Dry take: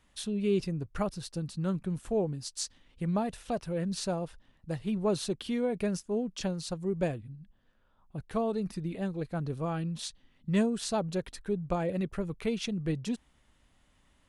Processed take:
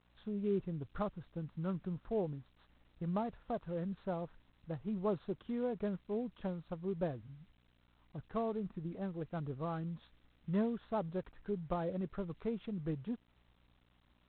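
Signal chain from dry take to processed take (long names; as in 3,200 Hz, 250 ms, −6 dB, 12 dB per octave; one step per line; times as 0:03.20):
mains hum 60 Hz, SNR 30 dB
high shelf with overshoot 1,800 Hz −11 dB, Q 1.5
level −7 dB
G.726 24 kbit/s 8,000 Hz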